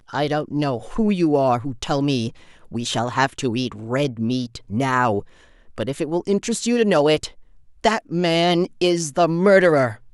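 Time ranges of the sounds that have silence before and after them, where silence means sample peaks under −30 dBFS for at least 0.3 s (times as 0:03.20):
0:02.72–0:05.20
0:05.78–0:07.28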